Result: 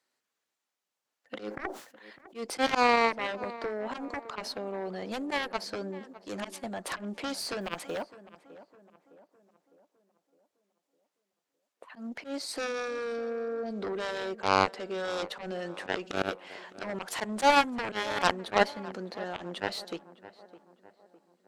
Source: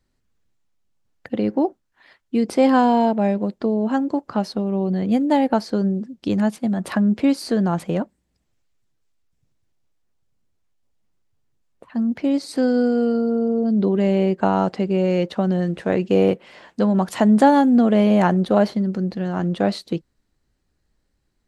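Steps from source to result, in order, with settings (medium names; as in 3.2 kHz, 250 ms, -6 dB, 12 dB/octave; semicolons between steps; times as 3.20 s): high-pass 580 Hz 12 dB/octave; Chebyshev shaper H 5 -35 dB, 6 -18 dB, 7 -12 dB, 8 -21 dB, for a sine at -7 dBFS; slow attack 100 ms; in parallel at -3 dB: compression, threshold -35 dBFS, peak gain reduction 18.5 dB; 7.61–8.02 s: on the sum: short-mantissa float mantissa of 4-bit; on a send: tape echo 608 ms, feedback 53%, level -15 dB, low-pass 1.4 kHz; 1.37–2.38 s: on the sum: decay stretcher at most 110 dB/s; trim -2 dB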